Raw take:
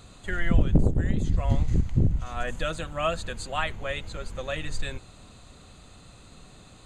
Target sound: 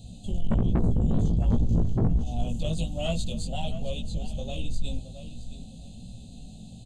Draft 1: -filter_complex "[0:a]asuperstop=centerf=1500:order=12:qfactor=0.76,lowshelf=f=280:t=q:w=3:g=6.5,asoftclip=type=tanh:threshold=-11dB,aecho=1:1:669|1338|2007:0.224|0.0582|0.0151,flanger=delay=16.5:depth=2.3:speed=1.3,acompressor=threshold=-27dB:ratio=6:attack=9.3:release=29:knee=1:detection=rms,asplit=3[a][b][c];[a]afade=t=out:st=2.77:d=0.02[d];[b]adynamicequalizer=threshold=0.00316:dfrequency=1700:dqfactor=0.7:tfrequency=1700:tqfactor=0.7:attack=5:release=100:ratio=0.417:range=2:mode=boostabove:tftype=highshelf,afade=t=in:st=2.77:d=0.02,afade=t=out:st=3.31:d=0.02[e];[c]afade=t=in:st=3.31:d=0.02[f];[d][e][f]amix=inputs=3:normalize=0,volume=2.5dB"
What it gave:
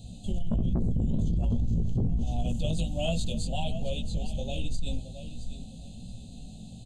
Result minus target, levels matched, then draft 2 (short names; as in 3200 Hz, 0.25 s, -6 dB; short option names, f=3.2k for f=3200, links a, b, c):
compressor: peak gain reduction +11.5 dB; soft clip: distortion -5 dB
-filter_complex "[0:a]asuperstop=centerf=1500:order=12:qfactor=0.76,lowshelf=f=280:t=q:w=3:g=6.5,asoftclip=type=tanh:threshold=-18.5dB,aecho=1:1:669|1338|2007:0.224|0.0582|0.0151,flanger=delay=16.5:depth=2.3:speed=1.3,asplit=3[a][b][c];[a]afade=t=out:st=2.77:d=0.02[d];[b]adynamicequalizer=threshold=0.00316:dfrequency=1700:dqfactor=0.7:tfrequency=1700:tqfactor=0.7:attack=5:release=100:ratio=0.417:range=2:mode=boostabove:tftype=highshelf,afade=t=in:st=2.77:d=0.02,afade=t=out:st=3.31:d=0.02[e];[c]afade=t=in:st=3.31:d=0.02[f];[d][e][f]amix=inputs=3:normalize=0,volume=2.5dB"